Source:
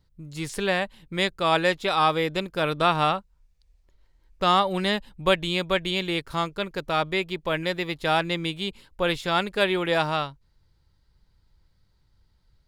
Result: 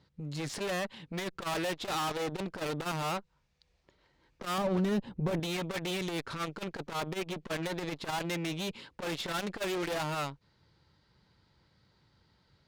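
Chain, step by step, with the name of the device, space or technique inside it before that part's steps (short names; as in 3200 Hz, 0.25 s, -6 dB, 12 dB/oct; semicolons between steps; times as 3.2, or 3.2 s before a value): valve radio (BPF 140–5000 Hz; tube stage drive 38 dB, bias 0.4; core saturation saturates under 220 Hz); 4.58–5.4 tilt shelf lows +8 dB; gain +7.5 dB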